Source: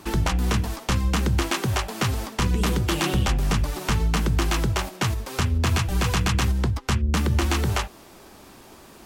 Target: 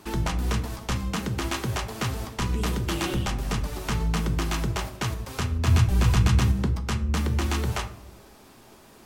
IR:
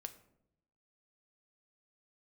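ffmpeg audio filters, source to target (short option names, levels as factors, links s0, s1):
-filter_complex "[0:a]asettb=1/sr,asplit=3[s0][s1][s2];[s0]atrim=end=5.674[s3];[s1]atrim=start=5.67:end=6.67,asetpts=PTS-STARTPTS,afade=t=in:d=0.004:c=qsin,afade=t=out:st=0.996:d=0.004:c=qsin,equalizer=f=100:w=0.48:g=9[s4];[s2]atrim=start=6.666[s5];[s3][s4]acrossfade=d=0.004:c1=hsin:c2=qsin[s6];[s6][s5]acrossfade=d=0.004:c1=qsin:c2=hsin[s7];[1:a]atrim=start_sample=2205[s8];[s7][s8]afir=irnorm=-1:irlink=0"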